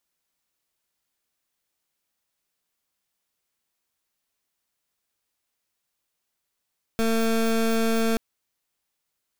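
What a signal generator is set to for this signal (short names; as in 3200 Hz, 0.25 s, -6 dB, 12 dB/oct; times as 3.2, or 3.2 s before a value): pulse 226 Hz, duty 23% -22 dBFS 1.18 s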